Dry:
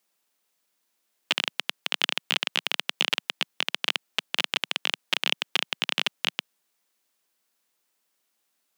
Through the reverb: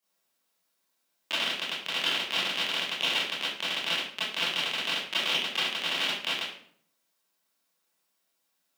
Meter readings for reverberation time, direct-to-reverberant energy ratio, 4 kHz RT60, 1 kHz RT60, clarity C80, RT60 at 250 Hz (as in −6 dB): 0.60 s, −11.0 dB, 0.45 s, 0.55 s, 6.5 dB, 0.75 s